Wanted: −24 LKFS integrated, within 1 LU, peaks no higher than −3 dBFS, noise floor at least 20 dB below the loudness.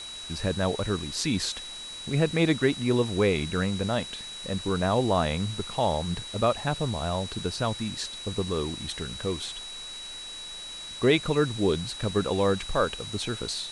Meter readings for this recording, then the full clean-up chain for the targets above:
interfering tone 3,900 Hz; level of the tone −38 dBFS; background noise floor −40 dBFS; target noise floor −48 dBFS; integrated loudness −28.0 LKFS; sample peak −9.0 dBFS; target loudness −24.0 LKFS
→ notch filter 3,900 Hz, Q 30
broadband denoise 8 dB, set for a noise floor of −40 dBFS
level +4 dB

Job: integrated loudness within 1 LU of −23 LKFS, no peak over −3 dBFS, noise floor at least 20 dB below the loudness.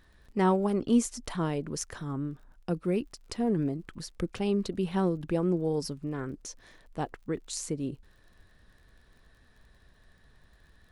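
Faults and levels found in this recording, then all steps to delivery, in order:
crackle rate 40 per second; integrated loudness −31.0 LKFS; sample peak −13.5 dBFS; target loudness −23.0 LKFS
→ click removal
level +8 dB

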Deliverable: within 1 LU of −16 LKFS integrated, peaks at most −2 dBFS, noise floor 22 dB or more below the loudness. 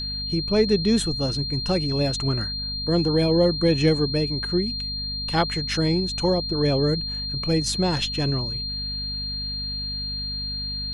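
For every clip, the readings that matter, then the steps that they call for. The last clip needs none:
mains hum 50 Hz; hum harmonics up to 250 Hz; level of the hum −33 dBFS; interfering tone 4,200 Hz; level of the tone −28 dBFS; integrated loudness −23.5 LKFS; sample peak −7.5 dBFS; target loudness −16.0 LKFS
→ mains-hum notches 50/100/150/200/250 Hz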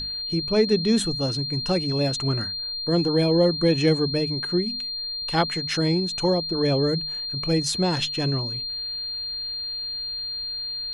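mains hum none found; interfering tone 4,200 Hz; level of the tone −28 dBFS
→ notch filter 4,200 Hz, Q 30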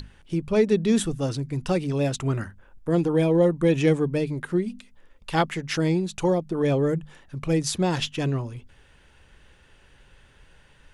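interfering tone none found; integrated loudness −24.5 LKFS; sample peak −9.0 dBFS; target loudness −16.0 LKFS
→ level +8.5 dB
brickwall limiter −2 dBFS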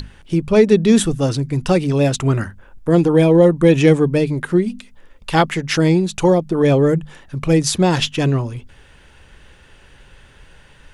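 integrated loudness −16.0 LKFS; sample peak −2.0 dBFS; background noise floor −48 dBFS

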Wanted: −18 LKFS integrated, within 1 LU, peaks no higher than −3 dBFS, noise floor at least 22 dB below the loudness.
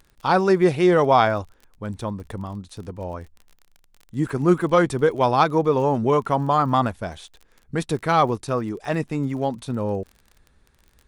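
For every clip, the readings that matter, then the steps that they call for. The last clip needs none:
crackle rate 32 per second; integrated loudness −21.0 LKFS; sample peak −4.5 dBFS; target loudness −18.0 LKFS
→ click removal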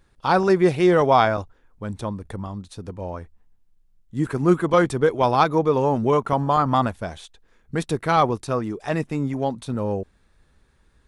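crackle rate 0 per second; integrated loudness −21.0 LKFS; sample peak −4.5 dBFS; target loudness −18.0 LKFS
→ level +3 dB
brickwall limiter −3 dBFS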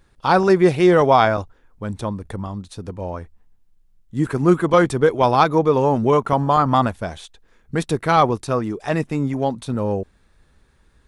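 integrated loudness −18.5 LKFS; sample peak −3.0 dBFS; background noise floor −58 dBFS

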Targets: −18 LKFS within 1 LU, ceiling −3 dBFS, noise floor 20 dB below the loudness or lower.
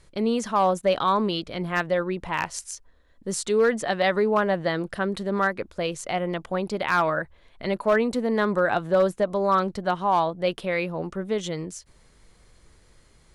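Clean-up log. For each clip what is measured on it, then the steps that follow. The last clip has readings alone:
share of clipped samples 0.3%; peaks flattened at −13.0 dBFS; integrated loudness −25.0 LKFS; sample peak −13.0 dBFS; target loudness −18.0 LKFS
→ clipped peaks rebuilt −13 dBFS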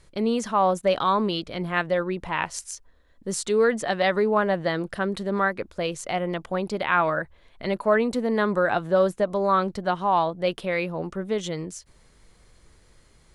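share of clipped samples 0.0%; integrated loudness −25.0 LKFS; sample peak −7.5 dBFS; target loudness −18.0 LKFS
→ level +7 dB
brickwall limiter −3 dBFS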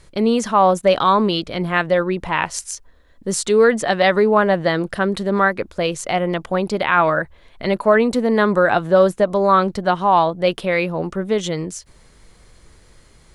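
integrated loudness −18.0 LKFS; sample peak −3.0 dBFS; background noise floor −51 dBFS

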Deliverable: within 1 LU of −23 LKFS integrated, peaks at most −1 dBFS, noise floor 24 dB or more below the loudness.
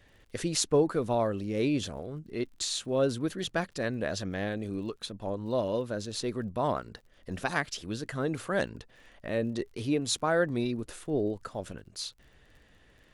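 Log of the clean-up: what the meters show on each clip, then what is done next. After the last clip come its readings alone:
crackle rate 34 per second; integrated loudness −31.5 LKFS; sample peak −10.5 dBFS; target loudness −23.0 LKFS
→ click removal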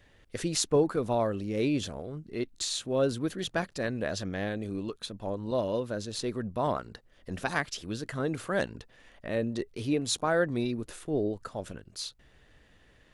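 crackle rate 0 per second; integrated loudness −31.5 LKFS; sample peak −10.5 dBFS; target loudness −23.0 LKFS
→ level +8.5 dB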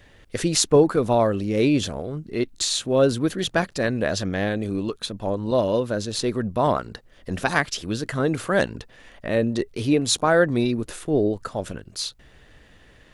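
integrated loudness −23.0 LKFS; sample peak −2.0 dBFS; background noise floor −53 dBFS

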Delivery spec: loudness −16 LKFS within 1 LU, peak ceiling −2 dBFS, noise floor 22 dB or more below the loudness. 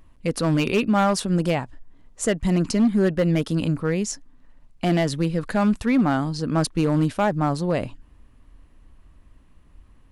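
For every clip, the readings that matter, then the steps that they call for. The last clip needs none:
share of clipped samples 1.1%; peaks flattened at −13.5 dBFS; integrated loudness −22.5 LKFS; sample peak −13.5 dBFS; target loudness −16.0 LKFS
→ clipped peaks rebuilt −13.5 dBFS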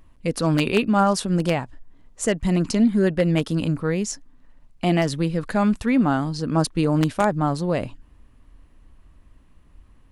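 share of clipped samples 0.0%; integrated loudness −22.0 LKFS; sample peak −4.5 dBFS; target loudness −16.0 LKFS
→ level +6 dB
brickwall limiter −2 dBFS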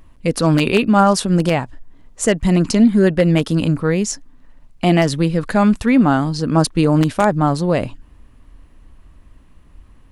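integrated loudness −16.0 LKFS; sample peak −2.0 dBFS; background noise floor −48 dBFS

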